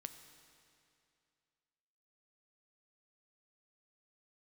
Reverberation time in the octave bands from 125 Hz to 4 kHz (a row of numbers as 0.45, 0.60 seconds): 2.5, 2.5, 2.5, 2.5, 2.4, 2.3 seconds